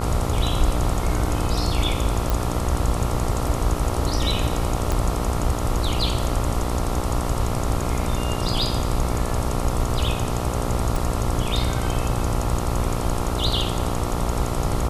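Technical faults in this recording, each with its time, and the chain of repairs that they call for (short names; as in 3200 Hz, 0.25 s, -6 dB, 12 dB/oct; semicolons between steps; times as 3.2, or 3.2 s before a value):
buzz 60 Hz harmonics 23 -27 dBFS
2.3 pop
4.92 pop -10 dBFS
10.96 pop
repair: de-click; de-hum 60 Hz, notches 23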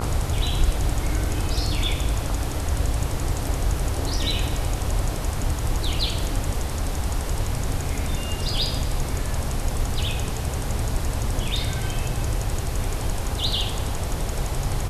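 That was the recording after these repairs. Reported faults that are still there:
4.92 pop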